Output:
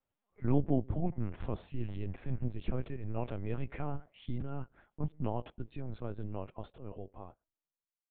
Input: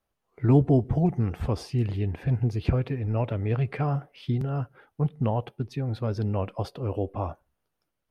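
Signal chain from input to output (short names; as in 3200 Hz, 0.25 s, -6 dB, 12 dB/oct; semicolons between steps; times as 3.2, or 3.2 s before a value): ending faded out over 2.51 s; LPC vocoder at 8 kHz pitch kept; gain -8.5 dB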